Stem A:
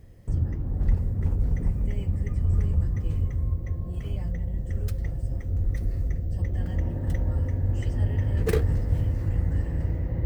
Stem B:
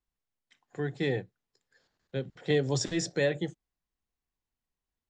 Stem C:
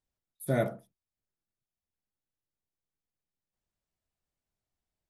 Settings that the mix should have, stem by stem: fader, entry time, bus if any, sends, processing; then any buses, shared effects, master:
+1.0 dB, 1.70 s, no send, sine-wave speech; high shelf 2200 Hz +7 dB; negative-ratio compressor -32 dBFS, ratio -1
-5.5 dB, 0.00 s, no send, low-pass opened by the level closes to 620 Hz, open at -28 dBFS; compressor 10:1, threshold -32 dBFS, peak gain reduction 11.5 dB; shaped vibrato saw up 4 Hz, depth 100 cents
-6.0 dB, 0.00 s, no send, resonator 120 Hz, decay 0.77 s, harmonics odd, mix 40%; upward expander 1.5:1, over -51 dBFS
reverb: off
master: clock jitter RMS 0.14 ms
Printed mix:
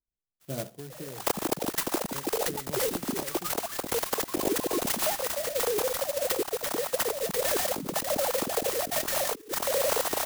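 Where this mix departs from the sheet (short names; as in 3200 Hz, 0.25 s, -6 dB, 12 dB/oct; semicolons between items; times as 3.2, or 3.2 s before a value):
stem A: entry 1.70 s -> 0.90 s; stem C: missing resonator 120 Hz, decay 0.77 s, harmonics odd, mix 40%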